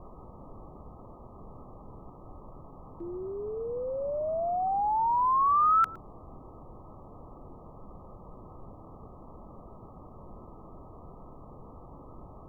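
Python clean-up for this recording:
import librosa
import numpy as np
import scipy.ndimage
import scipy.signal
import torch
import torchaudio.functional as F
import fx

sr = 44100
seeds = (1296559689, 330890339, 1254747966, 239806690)

y = fx.noise_reduce(x, sr, print_start_s=0.9, print_end_s=1.4, reduce_db=26.0)
y = fx.fix_echo_inverse(y, sr, delay_ms=113, level_db=-21.5)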